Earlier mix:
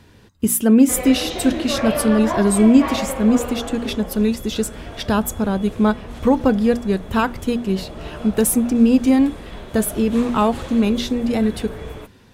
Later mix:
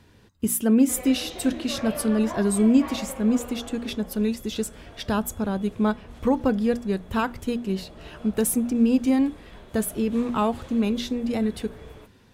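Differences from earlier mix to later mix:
speech -6.0 dB; background -11.0 dB

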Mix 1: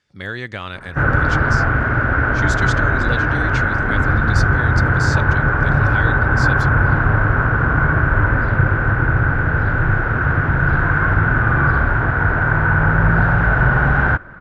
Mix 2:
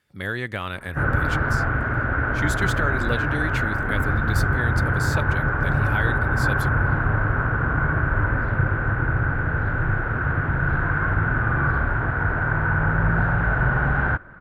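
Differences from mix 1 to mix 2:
background -6.0 dB; master: remove resonant low-pass 5.9 kHz, resonance Q 2.2

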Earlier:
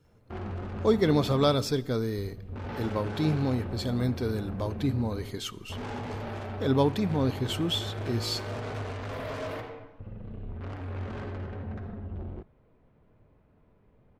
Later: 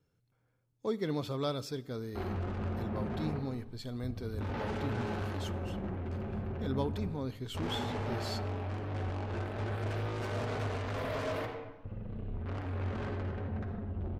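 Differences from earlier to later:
speech -10.5 dB; background: entry +1.85 s

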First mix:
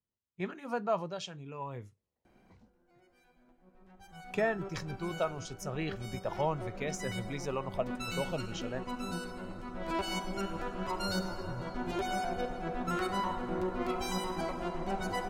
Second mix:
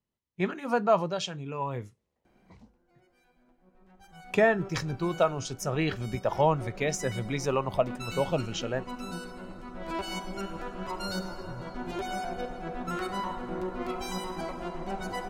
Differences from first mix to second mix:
speech +8.0 dB; master: add peaking EQ 96 Hz -5.5 dB 0.23 oct

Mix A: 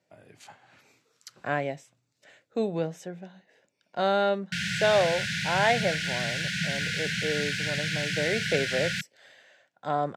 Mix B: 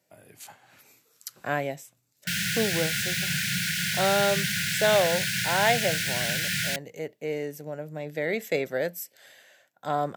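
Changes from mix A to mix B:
background: entry -2.25 s; master: remove distance through air 93 m

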